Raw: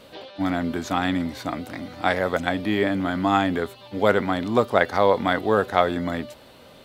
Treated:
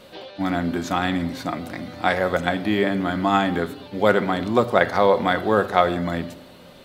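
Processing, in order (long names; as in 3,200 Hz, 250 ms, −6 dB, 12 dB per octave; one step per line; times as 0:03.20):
rectangular room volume 3,300 cubic metres, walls furnished, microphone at 0.94 metres
level +1 dB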